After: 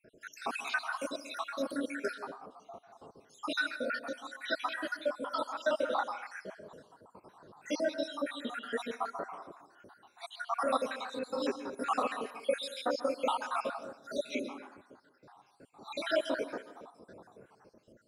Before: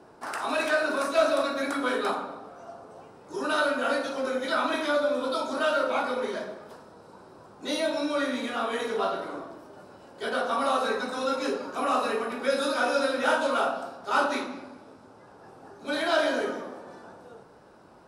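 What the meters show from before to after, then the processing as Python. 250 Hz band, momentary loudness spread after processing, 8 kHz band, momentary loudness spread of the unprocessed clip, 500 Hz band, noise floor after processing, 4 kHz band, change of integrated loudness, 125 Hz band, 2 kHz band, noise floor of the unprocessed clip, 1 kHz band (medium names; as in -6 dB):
-8.0 dB, 19 LU, -8.0 dB, 17 LU, -8.5 dB, -68 dBFS, -7.5 dB, -8.0 dB, no reading, -8.0 dB, -52 dBFS, -8.0 dB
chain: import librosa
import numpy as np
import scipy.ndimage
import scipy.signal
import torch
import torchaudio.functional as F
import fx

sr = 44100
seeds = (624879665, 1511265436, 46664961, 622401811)

y = fx.spec_dropout(x, sr, seeds[0], share_pct=73)
y = fx.rev_plate(y, sr, seeds[1], rt60_s=0.56, hf_ratio=0.55, predelay_ms=120, drr_db=11.5)
y = y * librosa.db_to_amplitude(-2.5)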